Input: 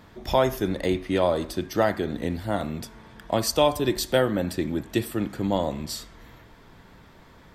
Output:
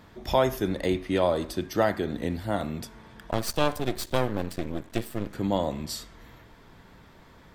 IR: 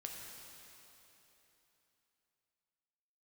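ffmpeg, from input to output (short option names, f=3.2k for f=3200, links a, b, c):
-filter_complex "[0:a]asettb=1/sr,asplit=3[a][b][c];[a]atrim=end=3.314[d];[b]atrim=start=3.31:end=5.35,asetpts=PTS-STARTPTS,afade=t=in:d=0.004:c=qsin,afade=t=out:st=2.036:d=0.004:c=qsin,aeval=exprs='max(val(0),0)':c=same[e];[c]atrim=start=5.346[f];[d][e]acrossfade=d=0.004:c1=hsin:c2=qsin[g];[g][f]acrossfade=d=0.004:c1=qsin:c2=hsin,volume=-1.5dB"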